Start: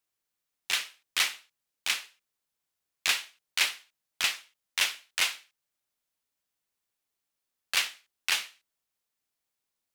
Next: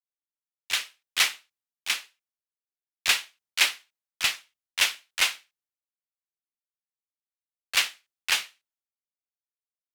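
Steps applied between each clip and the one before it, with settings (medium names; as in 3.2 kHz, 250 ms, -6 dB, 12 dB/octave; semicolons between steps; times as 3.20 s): three bands expanded up and down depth 100%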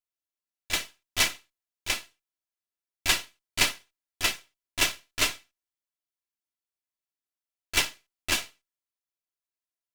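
comb filter that takes the minimum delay 3 ms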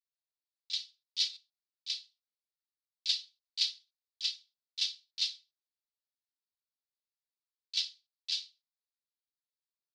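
Butterworth band-pass 4.3 kHz, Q 2.8; buffer glitch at 1.32 s, samples 512, times 3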